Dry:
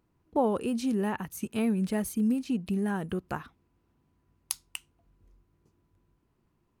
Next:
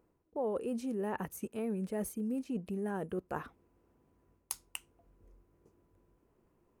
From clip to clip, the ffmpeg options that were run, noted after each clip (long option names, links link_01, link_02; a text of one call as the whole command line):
ffmpeg -i in.wav -af "equalizer=frequency=125:width_type=o:width=1:gain=-4,equalizer=frequency=500:width_type=o:width=1:gain=9,equalizer=frequency=4000:width_type=o:width=1:gain=-7,areverse,acompressor=threshold=-35dB:ratio=4,areverse" out.wav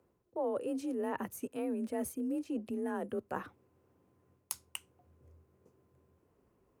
ffmpeg -i in.wav -af "afreqshift=37" out.wav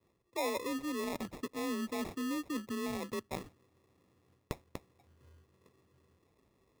ffmpeg -i in.wav -af "adynamicequalizer=threshold=0.00355:dfrequency=870:dqfactor=0.74:tfrequency=870:tqfactor=0.74:attack=5:release=100:ratio=0.375:range=2.5:mode=cutabove:tftype=bell,acrusher=samples=29:mix=1:aa=0.000001" out.wav